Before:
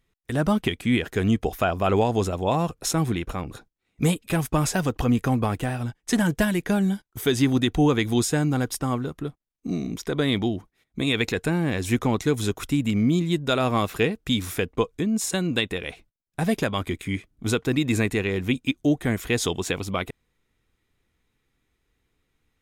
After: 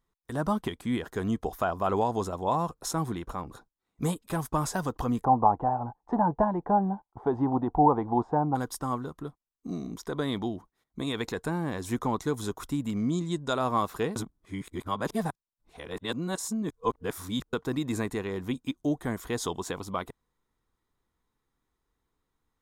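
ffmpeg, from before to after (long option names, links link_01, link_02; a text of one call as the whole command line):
ffmpeg -i in.wav -filter_complex "[0:a]asplit=3[link_01][link_02][link_03];[link_01]afade=type=out:start_time=5.23:duration=0.02[link_04];[link_02]lowpass=frequency=830:width_type=q:width=5.3,afade=type=in:start_time=5.23:duration=0.02,afade=type=out:start_time=8.54:duration=0.02[link_05];[link_03]afade=type=in:start_time=8.54:duration=0.02[link_06];[link_04][link_05][link_06]amix=inputs=3:normalize=0,asettb=1/sr,asplit=3[link_07][link_08][link_09];[link_07]atrim=end=12.974[link_10];[link_08]atrim=start=12.97:end=13.53,asetpts=PTS-STARTPTS,afade=type=in:duration=0.004:curve=qsin,afade=type=out:start_time=0.556:duration=0.004:curve=qsin,lowpass=frequency=7900:width_type=q:width=1.8[link_11];[link_09]atrim=start=13.526[link_12];[link_10][link_11]acrossfade=duration=0.004:curve1=hsin:curve2=qsin[link_13];[link_13][link_12]acrossfade=duration=0.004:curve1=qsin:curve2=hsin,asplit=3[link_14][link_15][link_16];[link_14]atrim=end=14.162[link_17];[link_15]atrim=start=14.158:end=17.532,asetpts=PTS-STARTPTS,areverse[link_18];[link_16]atrim=start=17.528[link_19];[link_17][link_18]acrossfade=duration=0.004:curve1=hsin:curve2=hsin[link_20];[link_20][link_19]acrossfade=duration=0.004:curve1=hsin:curve2=hsin,equalizer=frequency=100:width_type=o:width=0.67:gain=-4,equalizer=frequency=1000:width_type=o:width=0.67:gain=9,equalizer=frequency=2500:width_type=o:width=0.67:gain=-10,volume=-7dB" out.wav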